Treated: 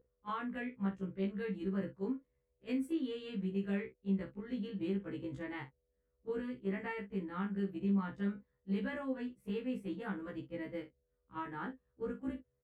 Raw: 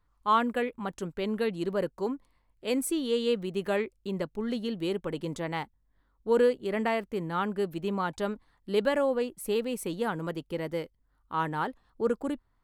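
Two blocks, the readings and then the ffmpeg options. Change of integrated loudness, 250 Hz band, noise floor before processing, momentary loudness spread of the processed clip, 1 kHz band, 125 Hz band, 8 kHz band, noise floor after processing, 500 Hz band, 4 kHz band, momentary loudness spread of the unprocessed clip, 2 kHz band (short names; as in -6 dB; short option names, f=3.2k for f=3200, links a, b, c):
-9.0 dB, -4.0 dB, -71 dBFS, 8 LU, -15.0 dB, -2.5 dB, under -25 dB, -82 dBFS, -13.5 dB, -15.5 dB, 10 LU, -9.5 dB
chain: -filter_complex "[0:a]highpass=64,acrossover=split=160|960[a][b][c];[a]acontrast=57[d];[d][b][c]amix=inputs=3:normalize=0,highshelf=f=8.2k:g=5,aeval=exprs='val(0)+0.0158*sin(2*PI*490*n/s)':c=same,firequalizer=gain_entry='entry(100,0);entry(620,-16);entry(1800,-6);entry(4000,-19);entry(11000,-27)':delay=0.05:min_phase=1,agate=range=-12dB:threshold=-38dB:ratio=16:detection=peak,acompressor=threshold=-35dB:ratio=6,asplit=2[e][f];[f]adelay=45,volume=-11dB[g];[e][g]amix=inputs=2:normalize=0,afftfilt=real='re*1.73*eq(mod(b,3),0)':imag='im*1.73*eq(mod(b,3),0)':win_size=2048:overlap=0.75,volume=4dB"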